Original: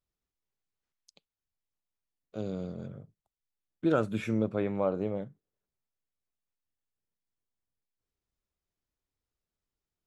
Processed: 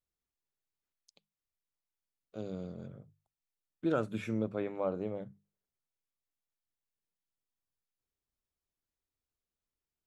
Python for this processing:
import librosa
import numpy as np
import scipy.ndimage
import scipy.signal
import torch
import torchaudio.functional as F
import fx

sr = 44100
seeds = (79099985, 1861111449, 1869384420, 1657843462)

y = fx.hum_notches(x, sr, base_hz=50, count=4)
y = F.gain(torch.from_numpy(y), -4.5).numpy()